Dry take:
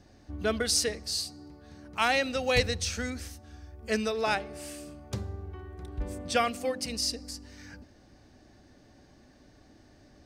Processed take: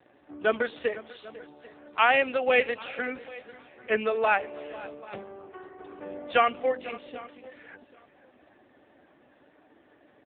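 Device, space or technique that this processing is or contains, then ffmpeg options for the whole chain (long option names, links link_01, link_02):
satellite phone: -filter_complex "[0:a]asplit=3[link_01][link_02][link_03];[link_01]afade=type=out:start_time=4.88:duration=0.02[link_04];[link_02]lowpass=7800,afade=type=in:start_time=4.88:duration=0.02,afade=type=out:start_time=5.58:duration=0.02[link_05];[link_03]afade=type=in:start_time=5.58:duration=0.02[link_06];[link_04][link_05][link_06]amix=inputs=3:normalize=0,highpass=390,lowpass=3200,aecho=1:1:496:0.126,aecho=1:1:789|1578:0.0944|0.017,volume=6.5dB" -ar 8000 -c:a libopencore_amrnb -b:a 5900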